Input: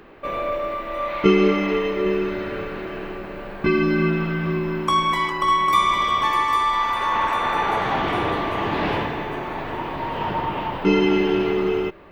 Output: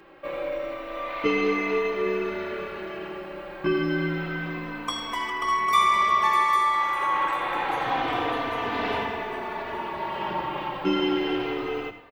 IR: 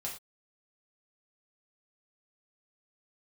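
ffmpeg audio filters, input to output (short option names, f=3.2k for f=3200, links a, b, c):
-filter_complex "[0:a]lowshelf=f=210:g=-9,bandreject=f=50:t=h:w=6,bandreject=f=100:t=h:w=6,bandreject=f=150:t=h:w=6,bandreject=f=200:t=h:w=6,asplit=2[a][b];[1:a]atrim=start_sample=2205,adelay=79[c];[b][c]afir=irnorm=-1:irlink=0,volume=-11dB[d];[a][d]amix=inputs=2:normalize=0,asplit=2[e][f];[f]adelay=3.2,afreqshift=-0.28[g];[e][g]amix=inputs=2:normalize=1"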